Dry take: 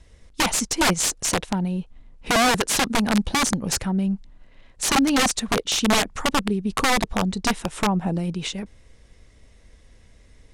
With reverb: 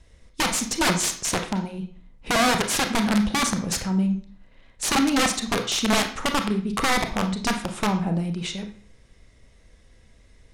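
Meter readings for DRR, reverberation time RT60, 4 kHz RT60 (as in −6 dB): 5.0 dB, 0.45 s, 0.40 s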